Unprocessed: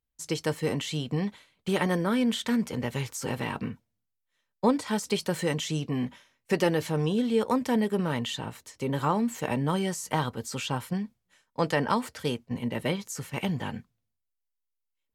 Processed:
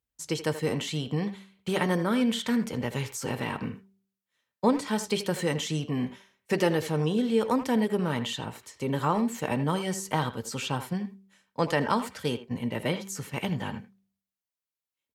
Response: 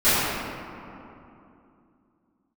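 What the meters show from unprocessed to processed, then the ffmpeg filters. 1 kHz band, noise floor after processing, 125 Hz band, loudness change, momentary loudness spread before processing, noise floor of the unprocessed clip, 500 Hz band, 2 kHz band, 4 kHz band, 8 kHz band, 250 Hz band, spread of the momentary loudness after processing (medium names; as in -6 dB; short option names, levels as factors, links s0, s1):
+0.5 dB, under -85 dBFS, 0.0 dB, 0.0 dB, 10 LU, -82 dBFS, 0.0 dB, +0.5 dB, 0.0 dB, 0.0 dB, 0.0 dB, 10 LU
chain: -filter_complex "[0:a]highpass=52,bandreject=f=194:t=h:w=4,bandreject=f=388:t=h:w=4,asplit=2[s0][s1];[s1]adelay=80,highpass=300,lowpass=3400,asoftclip=type=hard:threshold=0.112,volume=0.282[s2];[s0][s2]amix=inputs=2:normalize=0,asplit=2[s3][s4];[1:a]atrim=start_sample=2205,afade=t=out:st=0.17:d=0.01,atrim=end_sample=7938[s5];[s4][s5]afir=irnorm=-1:irlink=0,volume=0.00596[s6];[s3][s6]amix=inputs=2:normalize=0"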